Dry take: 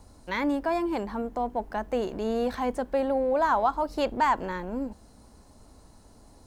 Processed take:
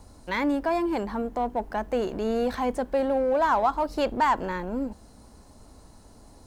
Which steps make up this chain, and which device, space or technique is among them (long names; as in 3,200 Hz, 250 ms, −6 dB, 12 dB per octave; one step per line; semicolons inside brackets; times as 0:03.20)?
parallel distortion (in parallel at −9 dB: hard clipping −28.5 dBFS, distortion −7 dB)